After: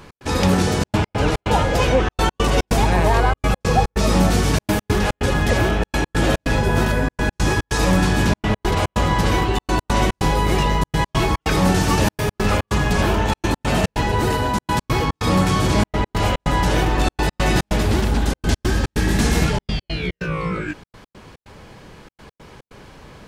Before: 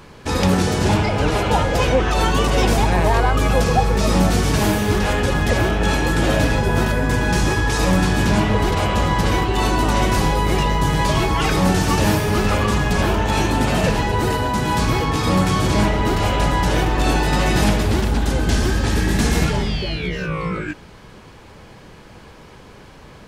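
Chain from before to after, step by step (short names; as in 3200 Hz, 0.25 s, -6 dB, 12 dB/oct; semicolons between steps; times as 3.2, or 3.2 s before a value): step gate "x.xxxxxx.x.x" 144 bpm -60 dB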